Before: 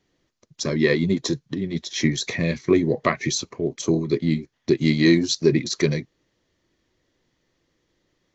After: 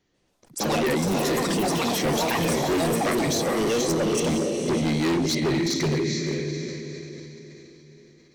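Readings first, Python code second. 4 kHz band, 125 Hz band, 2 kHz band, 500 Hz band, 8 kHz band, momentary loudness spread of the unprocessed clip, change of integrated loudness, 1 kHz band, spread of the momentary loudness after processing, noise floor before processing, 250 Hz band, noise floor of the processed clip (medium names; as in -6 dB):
0.0 dB, -2.5 dB, -1.5 dB, -0.5 dB, no reading, 9 LU, -1.5 dB, +7.5 dB, 11 LU, -73 dBFS, -2.5 dB, -62 dBFS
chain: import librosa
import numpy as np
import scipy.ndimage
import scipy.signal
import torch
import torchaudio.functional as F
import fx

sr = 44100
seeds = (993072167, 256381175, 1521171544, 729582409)

p1 = fx.echo_pitch(x, sr, ms=141, semitones=6, count=3, db_per_echo=-3.0)
p2 = p1 + fx.echo_diffused(p1, sr, ms=474, feedback_pct=42, wet_db=-5.5, dry=0)
p3 = np.clip(10.0 ** (19.0 / 20.0) * p2, -1.0, 1.0) / 10.0 ** (19.0 / 20.0)
p4 = fx.sustainer(p3, sr, db_per_s=21.0)
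y = F.gain(torch.from_numpy(p4), -1.5).numpy()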